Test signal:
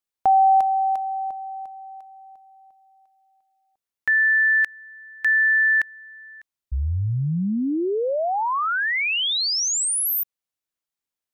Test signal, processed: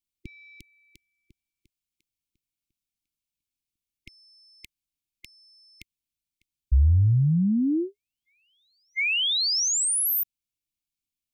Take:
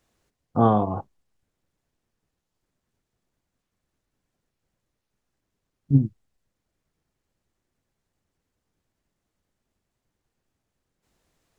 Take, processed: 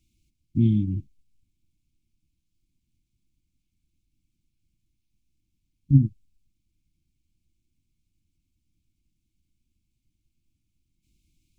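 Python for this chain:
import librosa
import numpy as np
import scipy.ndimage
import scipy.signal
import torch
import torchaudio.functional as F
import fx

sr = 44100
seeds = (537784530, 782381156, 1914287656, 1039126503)

p1 = fx.low_shelf(x, sr, hz=110.0, db=11.5)
p2 = 10.0 ** (-15.5 / 20.0) * np.tanh(p1 / 10.0 ** (-15.5 / 20.0))
p3 = p1 + F.gain(torch.from_numpy(p2), -11.0).numpy()
p4 = fx.brickwall_bandstop(p3, sr, low_hz=360.0, high_hz=2100.0)
y = F.gain(torch.from_numpy(p4), -3.5).numpy()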